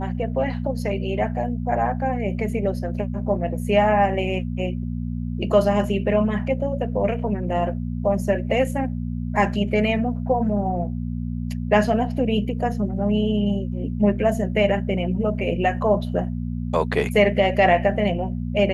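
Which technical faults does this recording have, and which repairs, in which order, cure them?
hum 60 Hz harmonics 4 -27 dBFS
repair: de-hum 60 Hz, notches 4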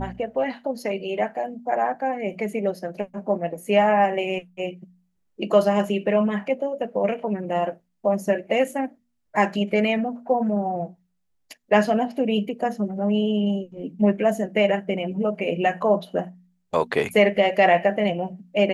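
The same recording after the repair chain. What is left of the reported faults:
none

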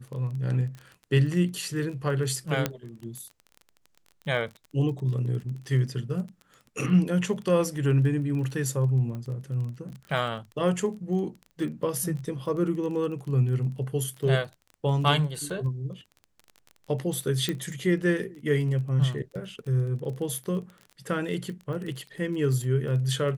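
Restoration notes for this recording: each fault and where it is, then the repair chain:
crackle 21/s -35 dBFS
2.66 pop -10 dBFS
9.15 pop -26 dBFS
17.49 pop -14 dBFS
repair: de-click

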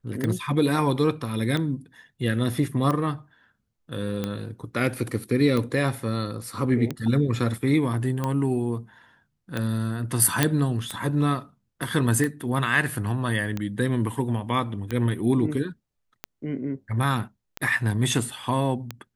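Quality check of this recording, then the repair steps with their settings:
tick 45 rpm -14 dBFS
10.43 pop -4 dBFS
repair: de-click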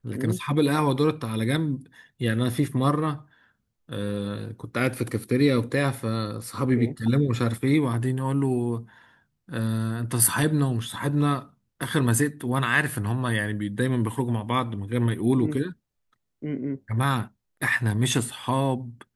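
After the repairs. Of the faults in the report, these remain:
none

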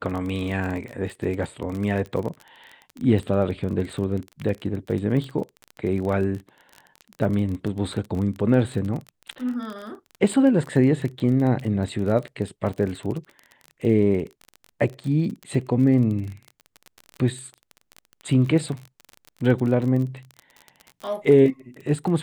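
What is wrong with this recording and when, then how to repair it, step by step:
crackle 27/s -29 dBFS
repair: de-click

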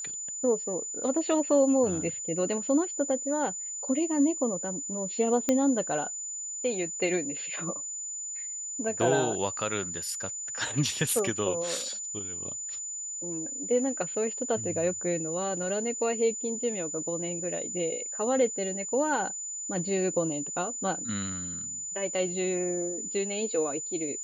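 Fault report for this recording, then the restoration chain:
tone 7000 Hz -34 dBFS
5.49 pop -11 dBFS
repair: de-click; notch 7000 Hz, Q 30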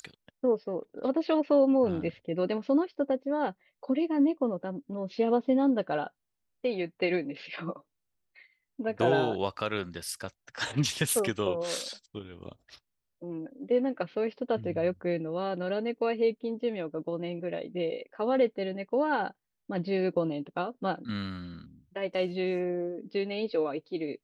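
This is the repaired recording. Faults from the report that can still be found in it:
none

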